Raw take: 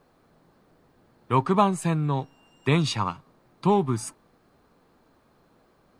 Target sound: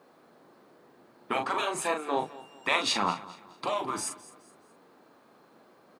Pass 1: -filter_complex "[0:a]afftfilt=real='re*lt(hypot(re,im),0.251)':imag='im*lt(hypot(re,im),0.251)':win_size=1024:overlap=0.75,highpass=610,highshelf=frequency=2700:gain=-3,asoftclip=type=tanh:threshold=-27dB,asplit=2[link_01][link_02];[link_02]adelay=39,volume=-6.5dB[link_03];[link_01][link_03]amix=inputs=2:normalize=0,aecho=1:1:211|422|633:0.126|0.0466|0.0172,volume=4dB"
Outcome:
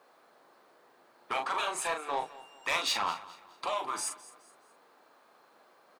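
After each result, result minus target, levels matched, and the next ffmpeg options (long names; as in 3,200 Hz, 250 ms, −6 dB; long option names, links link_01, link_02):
soft clipping: distortion +16 dB; 250 Hz band −9.5 dB
-filter_complex "[0:a]afftfilt=real='re*lt(hypot(re,im),0.251)':imag='im*lt(hypot(re,im),0.251)':win_size=1024:overlap=0.75,highpass=610,highshelf=frequency=2700:gain=-3,asoftclip=type=tanh:threshold=-15dB,asplit=2[link_01][link_02];[link_02]adelay=39,volume=-6.5dB[link_03];[link_01][link_03]amix=inputs=2:normalize=0,aecho=1:1:211|422|633:0.126|0.0466|0.0172,volume=4dB"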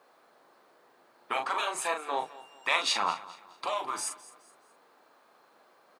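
250 Hz band −10.0 dB
-filter_complex "[0:a]afftfilt=real='re*lt(hypot(re,im),0.251)':imag='im*lt(hypot(re,im),0.251)':win_size=1024:overlap=0.75,highpass=250,highshelf=frequency=2700:gain=-3,asoftclip=type=tanh:threshold=-15dB,asplit=2[link_01][link_02];[link_02]adelay=39,volume=-6.5dB[link_03];[link_01][link_03]amix=inputs=2:normalize=0,aecho=1:1:211|422|633:0.126|0.0466|0.0172,volume=4dB"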